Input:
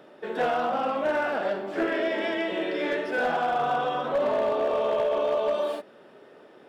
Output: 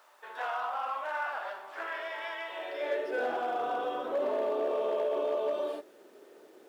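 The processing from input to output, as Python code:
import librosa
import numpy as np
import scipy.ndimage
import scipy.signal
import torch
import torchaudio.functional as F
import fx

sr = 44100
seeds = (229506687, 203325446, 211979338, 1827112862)

y = fx.dmg_noise_colour(x, sr, seeds[0], colour='pink', level_db=-57.0)
y = fx.filter_sweep_highpass(y, sr, from_hz=1000.0, to_hz=340.0, start_s=2.47, end_s=3.27, q=2.5)
y = F.gain(torch.from_numpy(y), -9.0).numpy()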